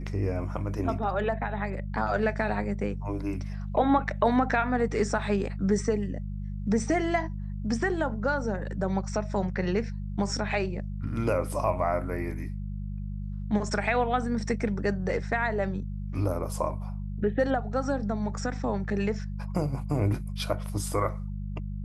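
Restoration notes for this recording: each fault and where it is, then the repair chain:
hum 50 Hz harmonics 4 -34 dBFS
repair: de-hum 50 Hz, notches 4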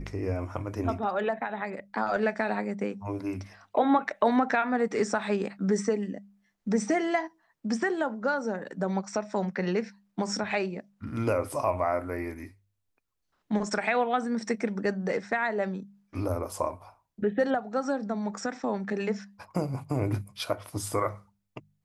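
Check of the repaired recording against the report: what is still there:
none

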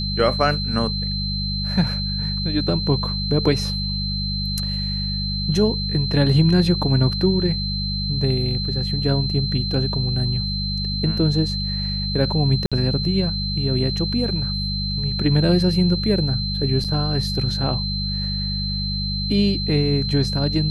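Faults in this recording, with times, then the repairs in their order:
hum 50 Hz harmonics 4 -26 dBFS
tone 4100 Hz -26 dBFS
12.66–12.72 gap 56 ms
16.84–16.85 gap 6.4 ms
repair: de-hum 50 Hz, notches 4; notch 4100 Hz, Q 30; interpolate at 12.66, 56 ms; interpolate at 16.84, 6.4 ms

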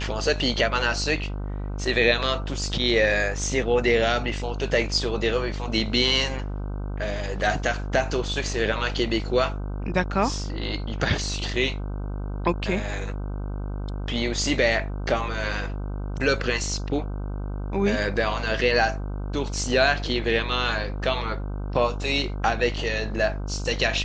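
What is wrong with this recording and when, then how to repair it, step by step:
buzz 50 Hz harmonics 31 -30 dBFS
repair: de-hum 50 Hz, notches 31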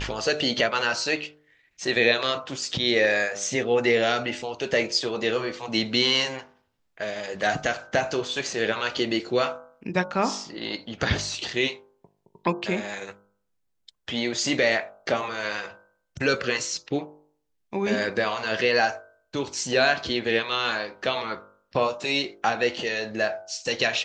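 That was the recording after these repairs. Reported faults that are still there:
none

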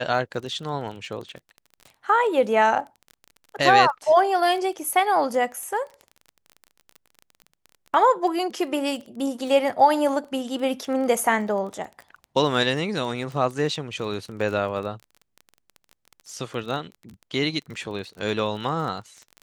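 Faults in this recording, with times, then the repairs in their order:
crackle 24/s -32 dBFS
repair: de-click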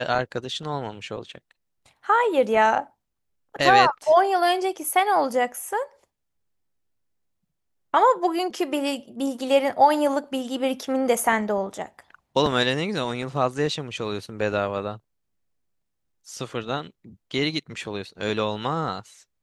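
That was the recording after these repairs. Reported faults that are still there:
none

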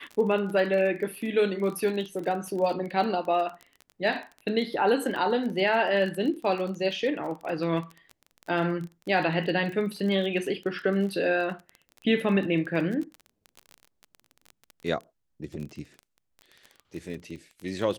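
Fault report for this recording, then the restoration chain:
crackle 25/s -33 dBFS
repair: de-click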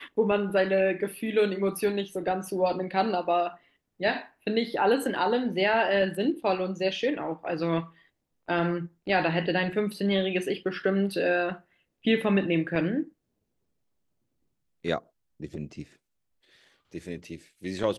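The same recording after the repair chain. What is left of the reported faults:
none

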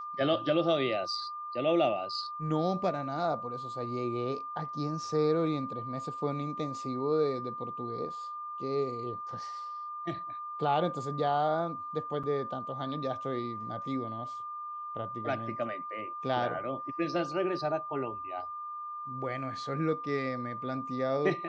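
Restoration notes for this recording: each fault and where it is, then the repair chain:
tone 1200 Hz -37 dBFS
12.23–12.24 gap 6.1 ms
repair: notch 1200 Hz, Q 30; interpolate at 12.23, 6.1 ms

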